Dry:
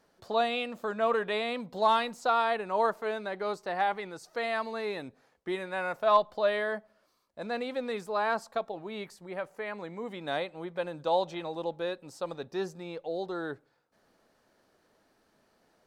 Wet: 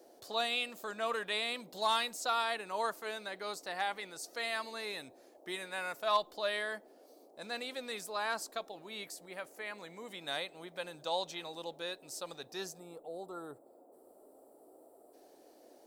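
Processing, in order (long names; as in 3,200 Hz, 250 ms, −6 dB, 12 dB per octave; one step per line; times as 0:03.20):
gain on a spectral selection 0:12.79–0:15.13, 1,400–7,200 Hz −17 dB
first-order pre-emphasis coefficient 0.9
noise in a band 270–730 Hz −69 dBFS
level +8.5 dB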